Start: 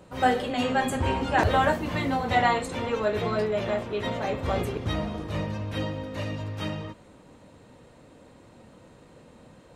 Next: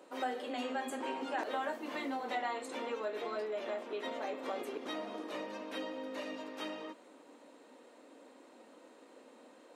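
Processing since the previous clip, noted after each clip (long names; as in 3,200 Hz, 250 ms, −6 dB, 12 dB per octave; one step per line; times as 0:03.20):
elliptic high-pass filter 260 Hz, stop band 70 dB
downward compressor 2.5 to 1, threshold −35 dBFS, peak gain reduction 12 dB
level −3.5 dB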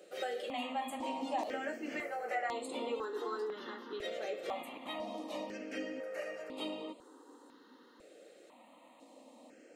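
step-sequenced phaser 2 Hz 260–5,800 Hz
level +3 dB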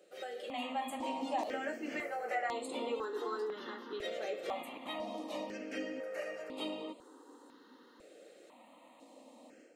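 automatic gain control gain up to 7 dB
level −6.5 dB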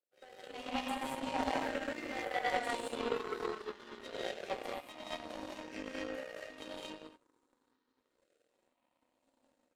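reverb whose tail is shaped and stops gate 260 ms rising, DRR −4.5 dB
power curve on the samples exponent 2
level +3 dB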